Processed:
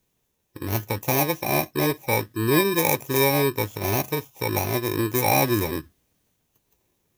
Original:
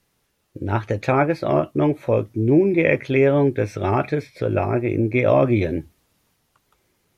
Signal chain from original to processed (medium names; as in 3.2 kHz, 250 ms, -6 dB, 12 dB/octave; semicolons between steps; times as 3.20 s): bit-reversed sample order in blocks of 32 samples; formant shift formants +3 st; trim -4 dB